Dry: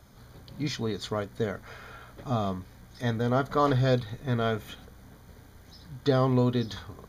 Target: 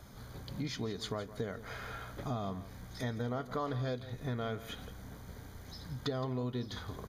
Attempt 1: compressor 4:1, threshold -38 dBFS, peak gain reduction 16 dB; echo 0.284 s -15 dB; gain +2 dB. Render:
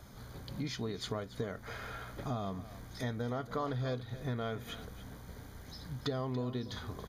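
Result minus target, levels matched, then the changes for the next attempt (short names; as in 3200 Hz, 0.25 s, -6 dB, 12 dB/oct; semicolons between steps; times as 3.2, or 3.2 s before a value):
echo 0.117 s late
change: echo 0.167 s -15 dB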